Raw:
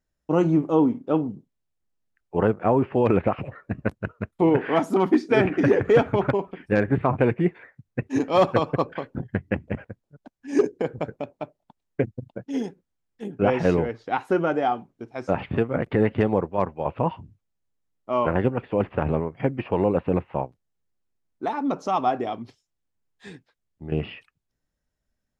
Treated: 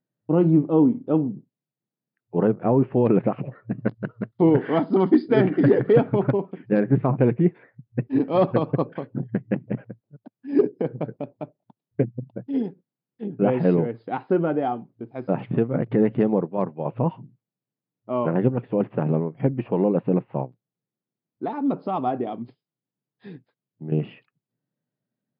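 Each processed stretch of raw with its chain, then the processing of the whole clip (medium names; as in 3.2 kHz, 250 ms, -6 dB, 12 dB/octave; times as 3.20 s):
3.78–5.93 s: treble shelf 2.1 kHz +8.5 dB + band-stop 2.5 kHz, Q 5.7
whole clip: FFT band-pass 110–5100 Hz; tilt shelf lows +7 dB, about 650 Hz; trim -2 dB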